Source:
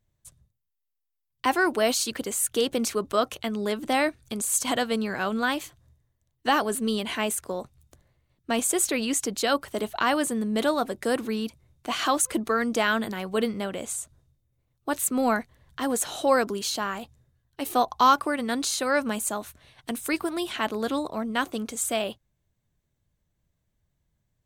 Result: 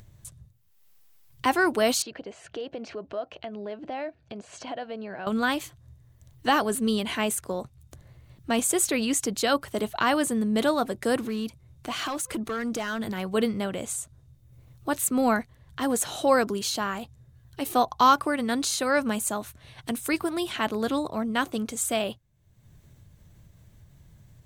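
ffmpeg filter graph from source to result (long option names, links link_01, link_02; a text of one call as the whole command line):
ffmpeg -i in.wav -filter_complex "[0:a]asettb=1/sr,asplit=3[link_01][link_02][link_03];[link_01]atrim=end=2.024[link_04];[link_02]atrim=start=2.02:end=5.27,asetpts=PTS-STARTPTS,afade=type=in:duration=0.004:curve=qsin,afade=type=out:start_time=3.246:duration=0.004:curve=qsin,highpass=110,equalizer=frequency=120:width_type=q:width=4:gain=-10,equalizer=frequency=230:width_type=q:width=4:gain=-6,equalizer=frequency=660:width_type=q:width=4:gain=9,equalizer=frequency=1200:width_type=q:width=4:gain=-7,equalizer=frequency=2100:width_type=q:width=4:gain=-4,equalizer=frequency=3600:width_type=q:width=4:gain=-9,lowpass=frequency=3900:width=0.5412,lowpass=frequency=3900:width=1.3066,acompressor=threshold=-40dB:ratio=2:attack=3.2:release=140:knee=1:detection=peak[link_05];[link_03]atrim=start=5.266[link_06];[link_04][link_05]acrossfade=duration=0.004:curve1=hsin:curve2=qsin[link_07];[link_07][link_06]acrossfade=duration=0.004:curve1=qsin:curve2=hsin,asettb=1/sr,asplit=3[link_08][link_09][link_10];[link_08]atrim=end=11.244[link_11];[link_09]atrim=start=11.24:end=13.18,asetpts=PTS-STARTPTS,afade=type=in:duration=0.004:curve=qsin,afade=type=out:start_time=1.936:duration=0.004:curve=qsin,acompressor=threshold=-28dB:ratio=2.5:attack=3.2:release=140:knee=1:detection=peak,asoftclip=type=hard:threshold=-26dB[link_12];[link_10]atrim=start=13.176[link_13];[link_11][link_12]acrossfade=duration=0.004:curve1=hsin:curve2=qsin[link_14];[link_14][link_13]acrossfade=duration=0.004:curve1=qsin:curve2=hsin,equalizer=frequency=110:width_type=o:width=1.2:gain=8,acompressor=mode=upward:threshold=-37dB:ratio=2.5" out.wav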